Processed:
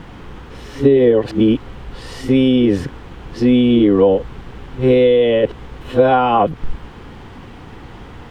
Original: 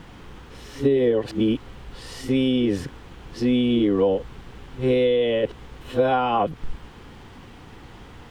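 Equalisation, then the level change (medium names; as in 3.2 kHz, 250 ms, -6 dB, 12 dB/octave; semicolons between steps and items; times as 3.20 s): treble shelf 3.6 kHz -8 dB; +8.0 dB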